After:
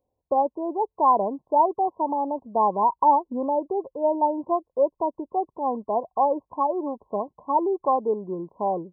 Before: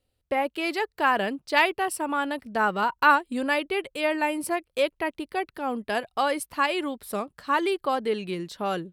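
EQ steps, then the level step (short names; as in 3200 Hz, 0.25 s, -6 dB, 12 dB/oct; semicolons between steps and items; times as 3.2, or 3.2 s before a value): brick-wall FIR low-pass 1100 Hz; tilt +3.5 dB/oct; +6.5 dB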